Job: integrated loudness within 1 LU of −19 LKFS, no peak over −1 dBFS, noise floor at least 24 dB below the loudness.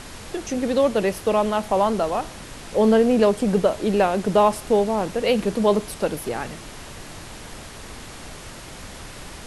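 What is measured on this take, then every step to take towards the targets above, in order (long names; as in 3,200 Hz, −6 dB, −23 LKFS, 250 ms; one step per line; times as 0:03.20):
background noise floor −39 dBFS; target noise floor −45 dBFS; integrated loudness −21.0 LKFS; sample peak −5.5 dBFS; target loudness −19.0 LKFS
→ noise reduction from a noise print 6 dB
level +2 dB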